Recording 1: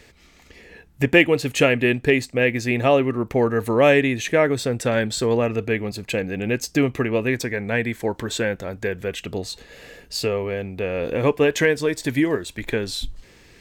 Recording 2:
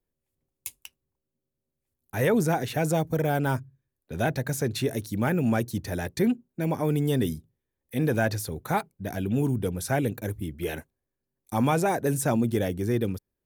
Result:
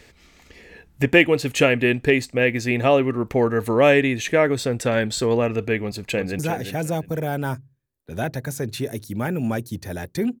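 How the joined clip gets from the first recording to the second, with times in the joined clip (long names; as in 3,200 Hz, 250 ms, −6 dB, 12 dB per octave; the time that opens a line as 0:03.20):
recording 1
0:05.81–0:06.39: delay throw 350 ms, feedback 20%, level −8 dB
0:06.39: continue with recording 2 from 0:02.41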